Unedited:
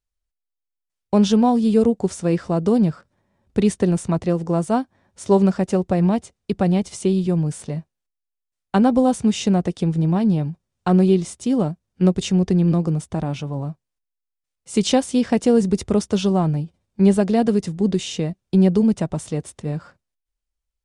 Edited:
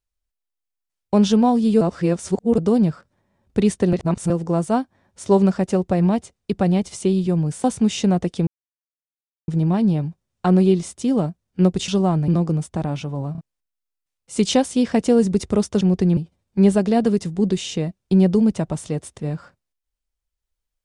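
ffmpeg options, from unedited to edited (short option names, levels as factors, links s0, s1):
-filter_complex "[0:a]asplit=14[s0][s1][s2][s3][s4][s5][s6][s7][s8][s9][s10][s11][s12][s13];[s0]atrim=end=1.812[s14];[s1]atrim=start=1.808:end=2.582,asetpts=PTS-STARTPTS,areverse[s15];[s2]atrim=start=2.578:end=3.932[s16];[s3]atrim=start=3.928:end=4.302,asetpts=PTS-STARTPTS,areverse[s17];[s4]atrim=start=4.298:end=7.642[s18];[s5]atrim=start=9.068:end=9.9,asetpts=PTS-STARTPTS,afade=t=out:st=0.828:d=0.004:c=hsin,apad=pad_dur=1.01[s19];[s6]atrim=start=9.9:end=12.302,asetpts=PTS-STARTPTS,afade=t=in:d=0.004:c=hsin[s20];[s7]atrim=start=16.188:end=16.592[s21];[s8]atrim=start=12.658:end=13.732[s22];[s9]atrim=start=13.698:end=13.732[s23];[s10]atrim=start=13.698:end=13.732[s24];[s11]atrim=start=13.788:end=16.192[s25];[s12]atrim=start=12.298:end=12.662[s26];[s13]atrim=start=16.588[s27];[s14][s15]acrossfade=d=0.004:c1=hsin:c2=hsin[s28];[s28][s16]acrossfade=d=0.004:c1=hsin:c2=hsin[s29];[s29][s17]acrossfade=d=0.004:c1=hsin:c2=hsin[s30];[s30][s18]acrossfade=d=0.004:c1=hsin:c2=hsin[s31];[s19][s20]concat=n=2:v=0:a=1[s32];[s31][s32]acrossfade=d=0.004:c1=hsin:c2=hsin[s33];[s33][s21]acrossfade=d=0.004:c1=hsin:c2=hsin[s34];[s34][s22]acrossfade=d=0.004:c1=hsin:c2=hsin[s35];[s35][s23]acrossfade=d=0.004:c1=hsin:c2=hsin[s36];[s36][s24]acrossfade=d=0.004:c1=hsin:c2=hsin[s37];[s37][s25]acrossfade=d=0.004:c1=hsin:c2=hsin[s38];[s38][s26]acrossfade=d=0.004:c1=hsin:c2=hsin[s39];[s39][s27]acrossfade=d=0.004:c1=hsin:c2=hsin"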